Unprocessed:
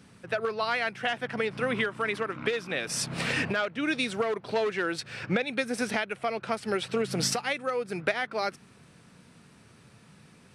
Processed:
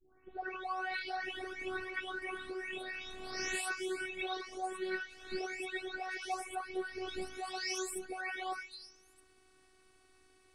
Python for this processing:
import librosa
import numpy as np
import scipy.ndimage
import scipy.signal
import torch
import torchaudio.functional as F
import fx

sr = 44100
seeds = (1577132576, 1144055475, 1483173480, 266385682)

y = fx.spec_delay(x, sr, highs='late', ms=642)
y = fx.robotise(y, sr, hz=374.0)
y = y * librosa.db_to_amplitude(-5.0)